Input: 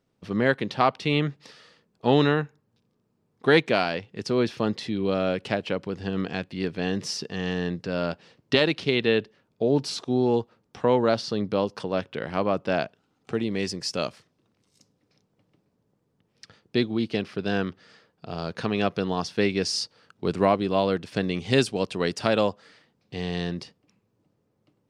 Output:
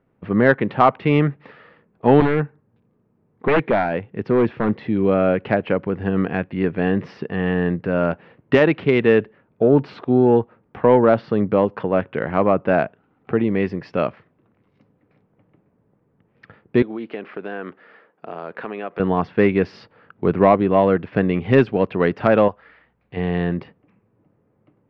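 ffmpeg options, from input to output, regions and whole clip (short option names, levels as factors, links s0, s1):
-filter_complex "[0:a]asettb=1/sr,asplit=3[s0][s1][s2];[s0]atrim=end=2.204[s3];[s1]atrim=start=2.2:end=4.96,asetpts=PTS-STARTPTS,afade=t=in:d=0.004:c=qsin,afade=t=out:st=2.756:d=0.004:c=qsin,equalizer=f=1700:w=0.54:g=-3,aeval=exprs='0.126*(abs(mod(val(0)/0.126+3,4)-2)-1)':c=same[s4];[s2]atrim=start=4.956[s5];[s3][s4]acrossfade=d=0.004:c1=hsin:c2=qsin[s6];[s6][s5]acrossfade=d=0.004:c1=qsin:c2=hsin,asettb=1/sr,asplit=3[s7][s8][s9];[s7]atrim=end=16.824[s10];[s8]atrim=start=16.82:end=19,asetpts=PTS-STARTPTS,afade=t=in:d=0.004:c=qsin,afade=t=out:st=2.176:d=0.004:c=qsin,highpass=330,acompressor=threshold=0.0178:ratio=3:attack=3.2:release=140:knee=1:detection=peak[s11];[s9]atrim=start=18.996[s12];[s10][s11]acrossfade=d=0.004:c1=hsin:c2=qsin[s13];[s13][s12]acrossfade=d=0.004:c1=qsin:c2=hsin,asettb=1/sr,asplit=3[s14][s15][s16];[s14]atrim=end=22.484[s17];[s15]atrim=start=22.48:end=23.17,asetpts=PTS-STARTPTS,afade=t=in:d=0.004:c=qsin,afade=t=out:st=0.686:d=0.004:c=qsin,equalizer=f=220:w=0.4:g=-9.5,aeval=exprs='val(0)+0.000126*(sin(2*PI*60*n/s)+sin(2*PI*2*60*n/s)/2+sin(2*PI*3*60*n/s)/3+sin(2*PI*4*60*n/s)/4+sin(2*PI*5*60*n/s)/5)':c=same[s18];[s16]atrim=start=23.166[s19];[s17][s18]acrossfade=d=0.004:c1=hsin:c2=qsin[s20];[s20][s19]acrossfade=d=0.004:c1=qsin:c2=hsin,lowpass=f=2200:w=0.5412,lowpass=f=2200:w=1.3066,acontrast=71,volume=1.19"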